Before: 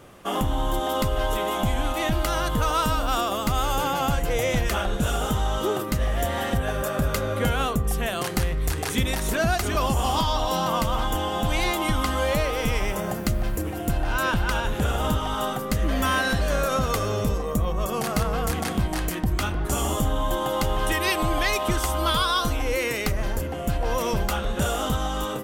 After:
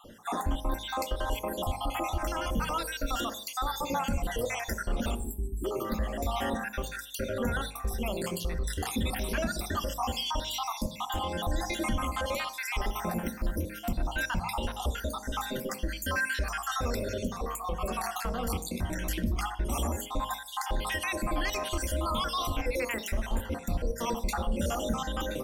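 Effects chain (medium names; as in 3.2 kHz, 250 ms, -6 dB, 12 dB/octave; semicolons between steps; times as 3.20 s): random holes in the spectrogram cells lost 58%; peak limiter -22.5 dBFS, peak gain reduction 9 dB; spectral selection erased 5.15–5.65 s, 430–7400 Hz; de-hum 52.05 Hz, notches 20; on a send: reverberation RT60 0.45 s, pre-delay 3 ms, DRR 10.5 dB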